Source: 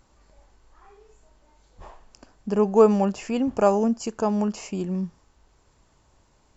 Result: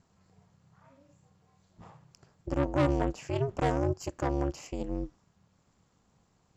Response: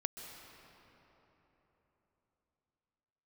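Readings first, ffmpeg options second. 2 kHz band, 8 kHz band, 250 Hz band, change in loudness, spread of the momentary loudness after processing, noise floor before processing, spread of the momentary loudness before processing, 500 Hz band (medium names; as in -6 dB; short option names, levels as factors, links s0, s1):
-0.5 dB, no reading, -9.0 dB, -8.5 dB, 11 LU, -63 dBFS, 13 LU, -10.5 dB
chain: -af "aeval=exprs='(tanh(10*val(0)+0.8)-tanh(0.8))/10':c=same,aeval=exprs='val(0)*sin(2*PI*140*n/s)':c=same"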